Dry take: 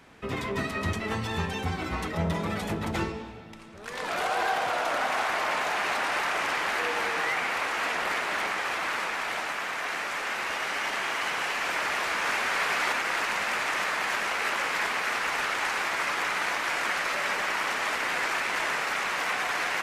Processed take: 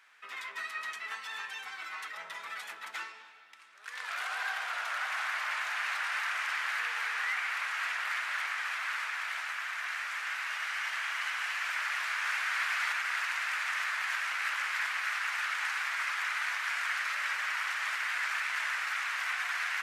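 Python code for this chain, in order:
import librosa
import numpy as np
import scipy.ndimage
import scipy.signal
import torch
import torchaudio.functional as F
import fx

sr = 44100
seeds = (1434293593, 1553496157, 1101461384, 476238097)

y = fx.highpass_res(x, sr, hz=1500.0, q=1.6)
y = F.gain(torch.from_numpy(y), -7.0).numpy()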